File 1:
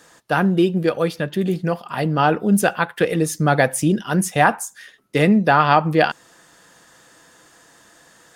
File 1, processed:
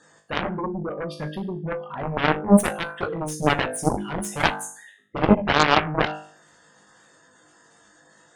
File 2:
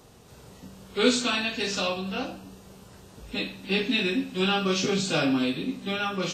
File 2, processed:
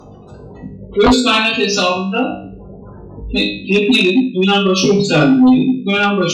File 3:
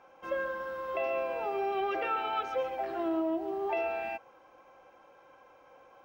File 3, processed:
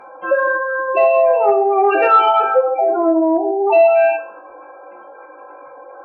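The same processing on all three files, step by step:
dynamic equaliser 1,800 Hz, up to −3 dB, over −38 dBFS, Q 3.1
gate on every frequency bin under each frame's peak −15 dB strong
tuned comb filter 51 Hz, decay 0.46 s, harmonics all, mix 90%
harmonic generator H 4 −42 dB, 7 −12 dB, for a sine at −8.5 dBFS
normalise the peak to −3 dBFS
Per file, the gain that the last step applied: +6.5, +26.5, +30.5 decibels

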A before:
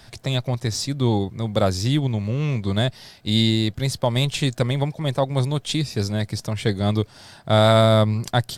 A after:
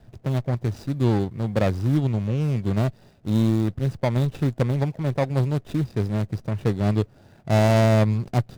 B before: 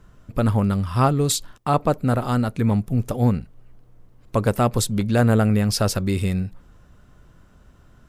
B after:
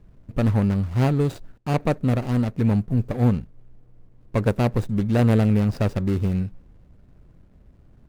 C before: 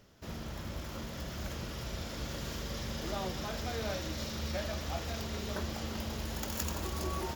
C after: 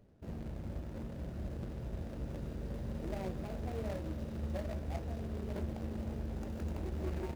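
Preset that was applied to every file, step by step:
running median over 41 samples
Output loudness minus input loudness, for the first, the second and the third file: −1.5, −1.0, −3.0 LU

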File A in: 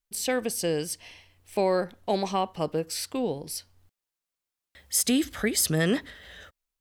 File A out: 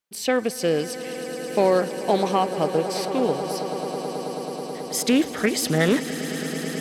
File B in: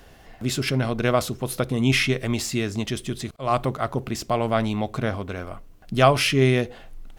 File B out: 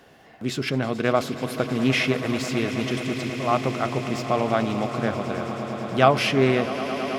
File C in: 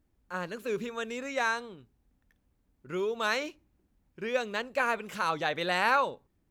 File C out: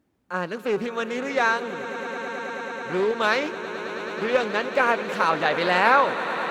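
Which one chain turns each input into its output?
high-pass filter 150 Hz 12 dB per octave
high-shelf EQ 4,800 Hz −7.5 dB
on a send: echo that builds up and dies away 108 ms, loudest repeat 8, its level −16 dB
on the sum: dynamic equaliser 9,200 Hz, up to −3 dB, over −49 dBFS, Q 1.8
highs frequency-modulated by the lows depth 0.17 ms
loudness normalisation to −24 LKFS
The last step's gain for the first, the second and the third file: +5.5, 0.0, +8.0 decibels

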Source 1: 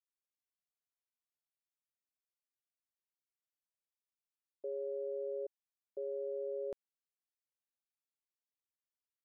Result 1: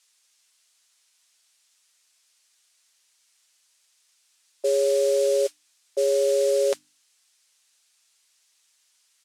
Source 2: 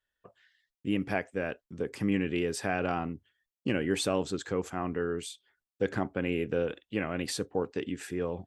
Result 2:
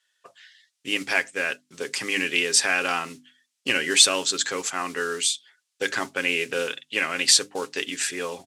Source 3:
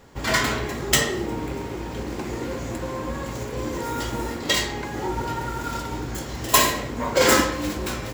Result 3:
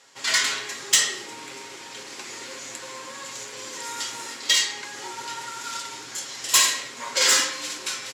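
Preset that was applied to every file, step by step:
comb filter 7.4 ms, depth 36%
noise that follows the level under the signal 30 dB
meter weighting curve ITU-R 468
soft clipping −3.5 dBFS
high-pass filter 90 Hz
dynamic equaliser 700 Hz, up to −5 dB, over −45 dBFS, Q 2.7
mains-hum notches 50/100/150/200/250/300 Hz
loudness normalisation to −23 LKFS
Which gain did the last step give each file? +22.0, +8.0, −5.5 decibels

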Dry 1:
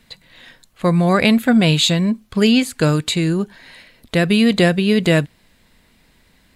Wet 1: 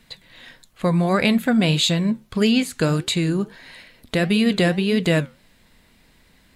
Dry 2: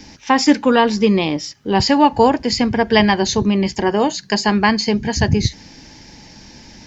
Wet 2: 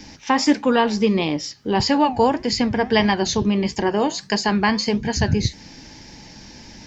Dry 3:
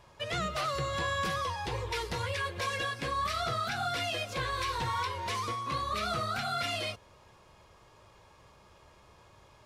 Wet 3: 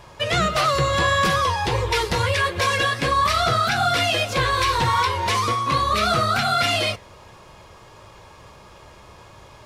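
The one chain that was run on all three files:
in parallel at −1 dB: downward compressor, threshold −21 dBFS
on the sum: flanger 1.6 Hz, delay 5.3 ms, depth 5.7 ms, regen −82%
loudness normalisation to −20 LKFS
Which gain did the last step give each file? −1.5, −1.5, +11.5 decibels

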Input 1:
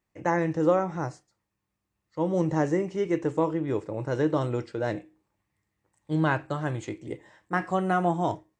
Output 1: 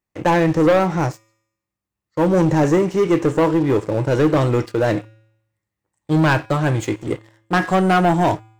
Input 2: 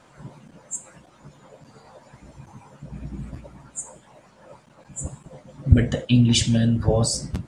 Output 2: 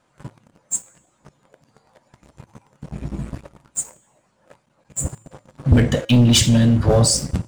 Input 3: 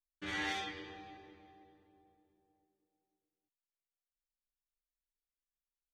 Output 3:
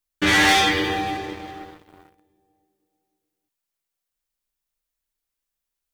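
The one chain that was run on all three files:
high-shelf EQ 9,500 Hz +4.5 dB
leveller curve on the samples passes 3
tuned comb filter 110 Hz, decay 0.83 s, harmonics odd, mix 40%
loudness normalisation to −18 LKFS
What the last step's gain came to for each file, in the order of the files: +6.0, −0.5, +19.0 decibels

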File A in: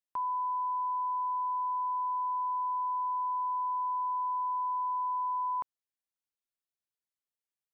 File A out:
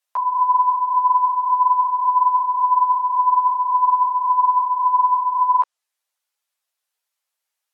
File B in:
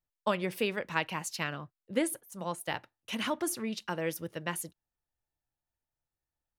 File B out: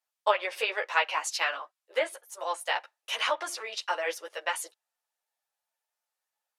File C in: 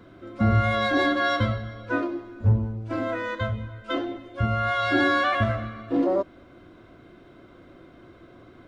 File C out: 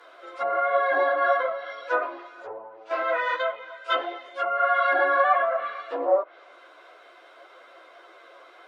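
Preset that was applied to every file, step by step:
treble cut that deepens with the level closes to 1,100 Hz, closed at −20 dBFS
inverse Chebyshev high-pass filter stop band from 210 Hz, stop band 50 dB
string-ensemble chorus
normalise the peak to −9 dBFS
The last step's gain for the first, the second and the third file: +17.5, +10.0, +9.5 decibels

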